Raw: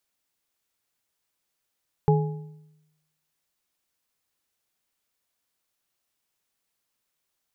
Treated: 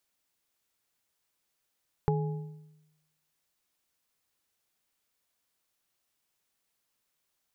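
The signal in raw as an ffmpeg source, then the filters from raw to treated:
-f lavfi -i "aevalsrc='0.168*pow(10,-3*t/0.95)*sin(2*PI*154*t)+0.112*pow(10,-3*t/0.701)*sin(2*PI*424.6*t)+0.075*pow(10,-3*t/0.573)*sin(2*PI*832.2*t)':d=1.55:s=44100"
-af "acompressor=threshold=-26dB:ratio=4"

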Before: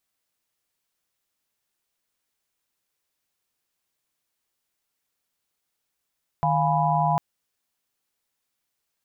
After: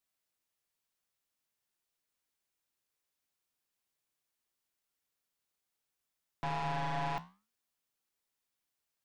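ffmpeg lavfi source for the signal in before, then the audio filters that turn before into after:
-f lavfi -i "aevalsrc='0.0596*(sin(2*PI*155.56*t)+sin(2*PI*698.46*t)+sin(2*PI*830.61*t)+sin(2*PI*987.77*t))':d=0.75:s=44100"
-af "aeval=exprs='(tanh(28.2*val(0)+0.55)-tanh(0.55))/28.2':c=same,flanger=delay=8.2:depth=9.7:regen=-77:speed=0.51:shape=sinusoidal"

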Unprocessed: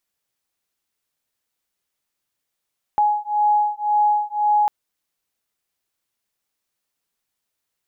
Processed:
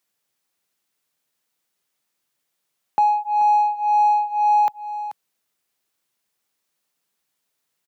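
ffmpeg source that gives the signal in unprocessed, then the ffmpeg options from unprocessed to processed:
-f lavfi -i "aevalsrc='0.112*(sin(2*PI*836*t)+sin(2*PI*837.9*t))':d=1.7:s=44100"
-filter_complex "[0:a]asplit=2[a][b];[b]asoftclip=type=tanh:threshold=-27dB,volume=-7dB[c];[a][c]amix=inputs=2:normalize=0,highpass=f=110:w=0.5412,highpass=f=110:w=1.3066,aecho=1:1:434:0.237"

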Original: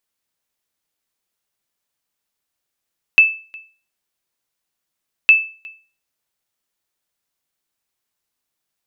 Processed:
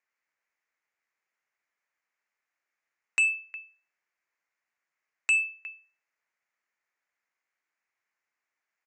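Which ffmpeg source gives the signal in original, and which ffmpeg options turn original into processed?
-f lavfi -i "aevalsrc='0.794*(sin(2*PI*2630*mod(t,2.11))*exp(-6.91*mod(t,2.11)/0.37)+0.0473*sin(2*PI*2630*max(mod(t,2.11)-0.36,0))*exp(-6.91*max(mod(t,2.11)-0.36,0)/0.37))':d=4.22:s=44100"
-af "highpass=f=930:p=1,highshelf=f=2.7k:t=q:w=3:g=-8.5,aresample=16000,asoftclip=type=tanh:threshold=-20dB,aresample=44100"

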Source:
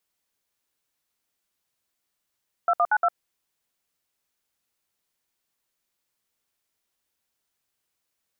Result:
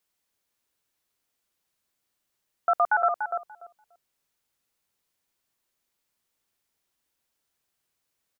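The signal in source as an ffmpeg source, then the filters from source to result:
-f lavfi -i "aevalsrc='0.1*clip(min(mod(t,0.117),0.054-mod(t,0.117))/0.002,0,1)*(eq(floor(t/0.117),0)*(sin(2*PI*697*mod(t,0.117))+sin(2*PI*1336*mod(t,0.117)))+eq(floor(t/0.117),1)*(sin(2*PI*697*mod(t,0.117))+sin(2*PI*1209*mod(t,0.117)))+eq(floor(t/0.117),2)*(sin(2*PI*852*mod(t,0.117))+sin(2*PI*1477*mod(t,0.117)))+eq(floor(t/0.117),3)*(sin(2*PI*697*mod(t,0.117))+sin(2*PI*1336*mod(t,0.117))))':d=0.468:s=44100"
-filter_complex "[0:a]asplit=2[a][b];[b]adelay=291,lowpass=f=800:p=1,volume=-3dB,asplit=2[c][d];[d]adelay=291,lowpass=f=800:p=1,volume=0.22,asplit=2[e][f];[f]adelay=291,lowpass=f=800:p=1,volume=0.22[g];[a][c][e][g]amix=inputs=4:normalize=0"

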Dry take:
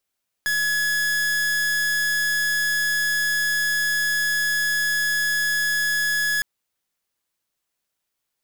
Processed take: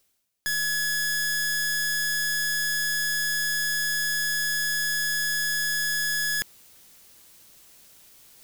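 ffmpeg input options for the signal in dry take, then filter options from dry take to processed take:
-f lavfi -i "aevalsrc='0.0794*(2*lt(mod(1690*t,1),0.44)-1)':d=5.96:s=44100"
-af "equalizer=f=1.2k:w=0.44:g=-6,areverse,acompressor=mode=upward:threshold=-30dB:ratio=2.5,areverse"

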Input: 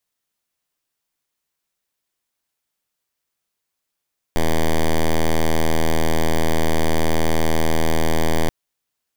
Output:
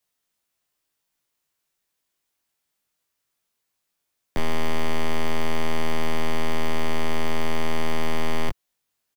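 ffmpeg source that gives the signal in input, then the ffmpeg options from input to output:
-f lavfi -i "aevalsrc='0.168*(2*lt(mod(80.5*t,1),0.06)-1)':d=4.13:s=44100"
-filter_complex "[0:a]acrossover=split=120|690|3600[a][b][c][d];[d]alimiter=level_in=2dB:limit=-24dB:level=0:latency=1,volume=-2dB[e];[a][b][c][e]amix=inputs=4:normalize=0,asoftclip=type=tanh:threshold=-17.5dB,asplit=2[f][g];[g]adelay=20,volume=-5dB[h];[f][h]amix=inputs=2:normalize=0"

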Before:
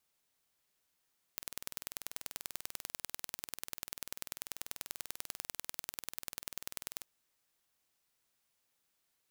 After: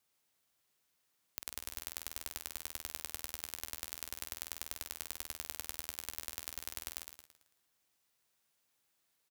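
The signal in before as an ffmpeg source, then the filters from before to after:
-f lavfi -i "aevalsrc='0.299*eq(mod(n,2162),0)*(0.5+0.5*eq(mod(n,4324),0))':d=5.65:s=44100"
-filter_complex "[0:a]highpass=47,asplit=2[a][b];[b]aecho=0:1:111|222|333|444|555:0.501|0.2|0.0802|0.0321|0.0128[c];[a][c]amix=inputs=2:normalize=0"

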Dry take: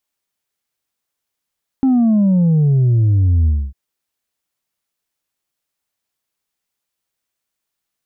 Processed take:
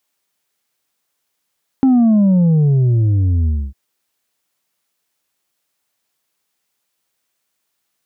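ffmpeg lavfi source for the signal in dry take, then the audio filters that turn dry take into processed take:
-f lavfi -i "aevalsrc='0.299*clip((1.9-t)/0.26,0,1)*tanh(1.33*sin(2*PI*270*1.9/log(65/270)*(exp(log(65/270)*t/1.9)-1)))/tanh(1.33)':d=1.9:s=44100"
-filter_complex "[0:a]highpass=f=140:p=1,asplit=2[a][b];[b]acompressor=threshold=-24dB:ratio=6,volume=2.5dB[c];[a][c]amix=inputs=2:normalize=0"

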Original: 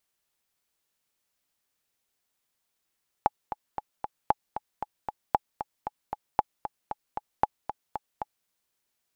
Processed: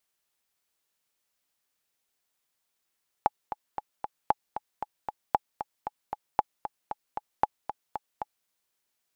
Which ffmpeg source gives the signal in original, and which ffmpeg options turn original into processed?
-f lavfi -i "aevalsrc='pow(10,(-7-11*gte(mod(t,4*60/230),60/230))/20)*sin(2*PI*844*mod(t,60/230))*exp(-6.91*mod(t,60/230)/0.03)':d=5.21:s=44100"
-af "lowshelf=f=280:g=-4.5"

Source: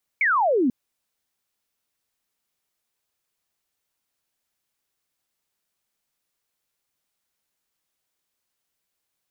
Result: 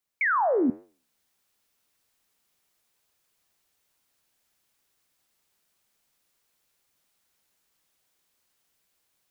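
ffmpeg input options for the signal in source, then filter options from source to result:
-f lavfi -i "aevalsrc='0.141*clip(t/0.002,0,1)*clip((0.49-t)/0.002,0,1)*sin(2*PI*2300*0.49/log(230/2300)*(exp(log(230/2300)*t/0.49)-1))':d=0.49:s=44100"
-af "dynaudnorm=f=620:g=3:m=10.5dB,flanger=delay=9.5:depth=9.5:regen=-83:speed=1.2:shape=triangular"

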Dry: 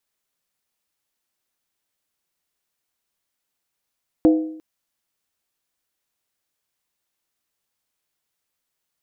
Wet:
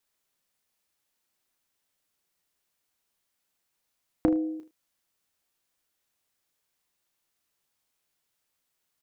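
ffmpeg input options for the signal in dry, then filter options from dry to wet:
-f lavfi -i "aevalsrc='0.376*pow(10,-3*t/0.69)*sin(2*PI*315*t)+0.141*pow(10,-3*t/0.547)*sin(2*PI*502.1*t)+0.0531*pow(10,-3*t/0.472)*sin(2*PI*672.8*t)+0.02*pow(10,-3*t/0.455)*sin(2*PI*723.2*t)+0.0075*pow(10,-3*t/0.424)*sin(2*PI*835.7*t)':d=0.35:s=44100"
-filter_complex "[0:a]acompressor=threshold=-24dB:ratio=3,asplit=2[a][b];[b]adelay=32,volume=-10.5dB[c];[a][c]amix=inputs=2:normalize=0,aecho=1:1:11|77:0.133|0.158"

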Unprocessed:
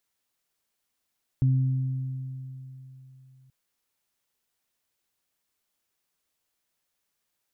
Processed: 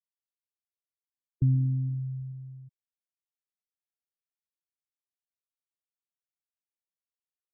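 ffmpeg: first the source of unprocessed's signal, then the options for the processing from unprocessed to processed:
-f lavfi -i "aevalsrc='0.133*pow(10,-3*t/3.37)*sin(2*PI*131*t)+0.0282*pow(10,-3*t/2.43)*sin(2*PI*262*t)':d=2.08:s=44100"
-filter_complex "[0:a]agate=range=-33dB:threshold=-41dB:ratio=3:detection=peak,asplit=2[a][b];[b]adelay=134.1,volume=-21dB,highshelf=f=4k:g=-3.02[c];[a][c]amix=inputs=2:normalize=0,afftfilt=real='re*gte(hypot(re,im),0.0708)':imag='im*gte(hypot(re,im),0.0708)':win_size=1024:overlap=0.75"

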